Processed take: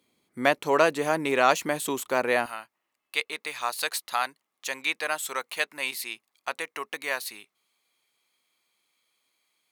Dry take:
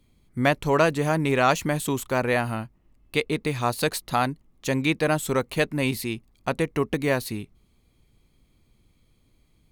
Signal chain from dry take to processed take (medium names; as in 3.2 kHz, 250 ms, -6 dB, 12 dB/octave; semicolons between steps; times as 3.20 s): high-pass 340 Hz 12 dB/octave, from 2.46 s 980 Hz